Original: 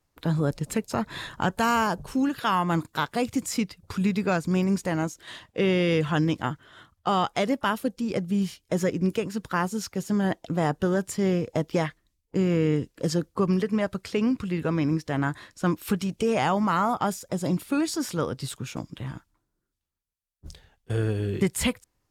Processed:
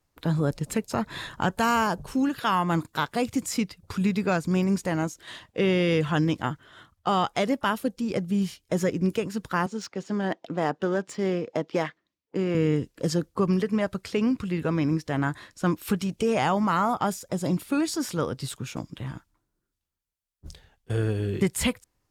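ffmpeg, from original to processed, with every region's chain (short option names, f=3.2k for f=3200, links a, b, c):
-filter_complex "[0:a]asettb=1/sr,asplit=3[a][b][c];[a]atrim=end=9.664[d];[b]atrim=start=9.66:end=12.55,asetpts=PTS-STARTPTS,afade=t=in:d=0.004:c=qsin,afade=t=out:st=2.886:d=0.004:c=qsin,highpass=230,lowpass=7.7k,adynamicsmooth=sensitivity=8:basefreq=4.8k[e];[c]atrim=start=12.546[f];[d][e]acrossfade=d=0.004:c1=hsin:c2=qsin[g];[g][f]acrossfade=d=0.004:c1=qsin:c2=hsin"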